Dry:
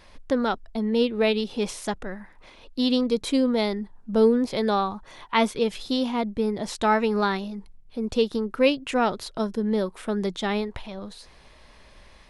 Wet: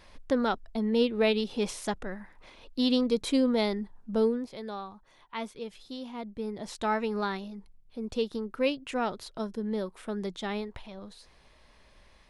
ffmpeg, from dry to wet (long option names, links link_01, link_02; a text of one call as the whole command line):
ffmpeg -i in.wav -af "volume=4.5dB,afade=type=out:start_time=3.97:duration=0.54:silence=0.251189,afade=type=in:start_time=6.02:duration=0.77:silence=0.421697" out.wav